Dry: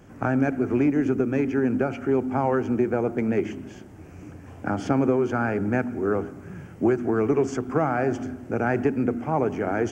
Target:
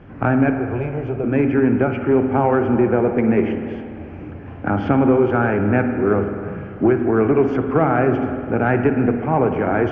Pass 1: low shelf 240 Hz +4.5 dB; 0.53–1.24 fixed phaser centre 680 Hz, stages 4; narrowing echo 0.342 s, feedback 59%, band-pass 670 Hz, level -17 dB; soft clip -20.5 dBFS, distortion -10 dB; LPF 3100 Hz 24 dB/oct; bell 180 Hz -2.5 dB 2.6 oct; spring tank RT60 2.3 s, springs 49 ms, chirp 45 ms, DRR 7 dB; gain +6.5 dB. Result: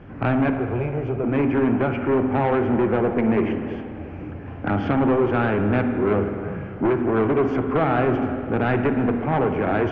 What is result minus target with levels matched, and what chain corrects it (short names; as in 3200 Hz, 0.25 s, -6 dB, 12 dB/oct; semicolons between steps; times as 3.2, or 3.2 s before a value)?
soft clip: distortion +15 dB
low shelf 240 Hz +4.5 dB; 0.53–1.24 fixed phaser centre 680 Hz, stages 4; narrowing echo 0.342 s, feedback 59%, band-pass 670 Hz, level -17 dB; soft clip -9 dBFS, distortion -25 dB; LPF 3100 Hz 24 dB/oct; bell 180 Hz -2.5 dB 2.6 oct; spring tank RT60 2.3 s, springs 49 ms, chirp 45 ms, DRR 7 dB; gain +6.5 dB